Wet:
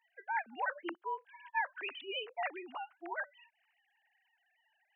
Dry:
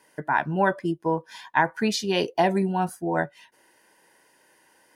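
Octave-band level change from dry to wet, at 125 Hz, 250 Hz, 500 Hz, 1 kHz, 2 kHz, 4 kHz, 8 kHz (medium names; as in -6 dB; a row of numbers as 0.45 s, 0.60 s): under -40 dB, -24.5 dB, -19.5 dB, -13.0 dB, -10.0 dB, -11.5 dB, under -40 dB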